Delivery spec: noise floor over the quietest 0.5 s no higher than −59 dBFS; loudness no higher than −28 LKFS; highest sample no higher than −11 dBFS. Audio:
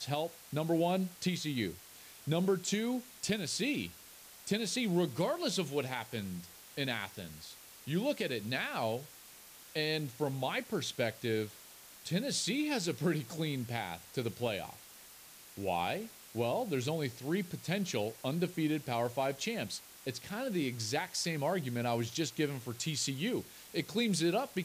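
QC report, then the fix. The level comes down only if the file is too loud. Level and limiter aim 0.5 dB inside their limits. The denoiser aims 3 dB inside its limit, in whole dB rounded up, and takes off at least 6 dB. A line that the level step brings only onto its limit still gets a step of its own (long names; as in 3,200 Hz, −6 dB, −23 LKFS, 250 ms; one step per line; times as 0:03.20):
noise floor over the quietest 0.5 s −55 dBFS: out of spec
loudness −35.0 LKFS: in spec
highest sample −20.0 dBFS: in spec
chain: broadband denoise 7 dB, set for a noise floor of −55 dBFS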